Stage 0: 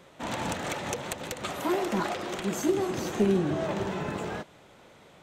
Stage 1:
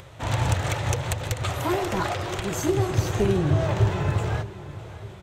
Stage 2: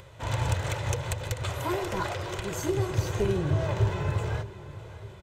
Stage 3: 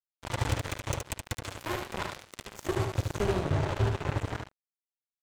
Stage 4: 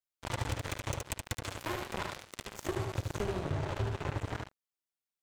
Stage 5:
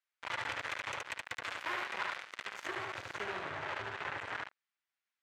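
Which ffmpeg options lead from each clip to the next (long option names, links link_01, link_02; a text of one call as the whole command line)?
ffmpeg -i in.wav -filter_complex "[0:a]lowshelf=frequency=150:width_type=q:width=3:gain=11,acompressor=mode=upward:threshold=-45dB:ratio=2.5,asplit=2[link_01][link_02];[link_02]adelay=610,lowpass=frequency=4500:poles=1,volume=-16dB,asplit=2[link_03][link_04];[link_04]adelay=610,lowpass=frequency=4500:poles=1,volume=0.53,asplit=2[link_05][link_06];[link_06]adelay=610,lowpass=frequency=4500:poles=1,volume=0.53,asplit=2[link_07][link_08];[link_08]adelay=610,lowpass=frequency=4500:poles=1,volume=0.53,asplit=2[link_09][link_10];[link_10]adelay=610,lowpass=frequency=4500:poles=1,volume=0.53[link_11];[link_01][link_03][link_05][link_07][link_09][link_11]amix=inputs=6:normalize=0,volume=4dB" out.wav
ffmpeg -i in.wav -af "aecho=1:1:2:0.34,volume=-5dB" out.wav
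ffmpeg -i in.wav -filter_complex "[0:a]acrusher=bits=3:mix=0:aa=0.5,asplit=2[link_01][link_02];[link_02]aecho=0:1:73:0.562[link_03];[link_01][link_03]amix=inputs=2:normalize=0,volume=-3.5dB" out.wav
ffmpeg -i in.wav -af "acompressor=threshold=-30dB:ratio=6" out.wav
ffmpeg -i in.wav -af "asoftclip=type=tanh:threshold=-30.5dB,bandpass=frequency=1800:width_type=q:width=1.3:csg=0,volume=10dB" out.wav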